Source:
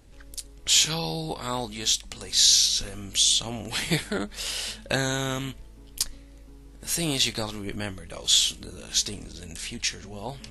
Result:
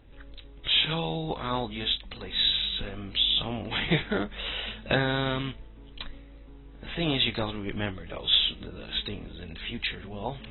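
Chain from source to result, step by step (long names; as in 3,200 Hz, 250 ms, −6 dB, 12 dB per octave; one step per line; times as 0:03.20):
AAC 16 kbit/s 24,000 Hz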